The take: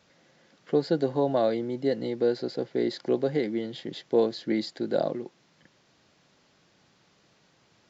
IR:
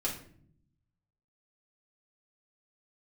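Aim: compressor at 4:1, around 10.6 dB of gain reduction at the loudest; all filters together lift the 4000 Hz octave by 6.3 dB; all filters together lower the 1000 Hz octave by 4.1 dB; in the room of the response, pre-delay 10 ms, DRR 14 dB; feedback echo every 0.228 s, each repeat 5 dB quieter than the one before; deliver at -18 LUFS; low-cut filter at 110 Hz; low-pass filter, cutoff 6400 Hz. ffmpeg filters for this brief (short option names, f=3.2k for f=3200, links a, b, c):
-filter_complex "[0:a]highpass=110,lowpass=6.4k,equalizer=f=1k:t=o:g=-7,equalizer=f=4k:t=o:g=8,acompressor=threshold=-32dB:ratio=4,aecho=1:1:228|456|684|912|1140|1368|1596:0.562|0.315|0.176|0.0988|0.0553|0.031|0.0173,asplit=2[a][b];[1:a]atrim=start_sample=2205,adelay=10[c];[b][c]afir=irnorm=-1:irlink=0,volume=-18.5dB[d];[a][d]amix=inputs=2:normalize=0,volume=16.5dB"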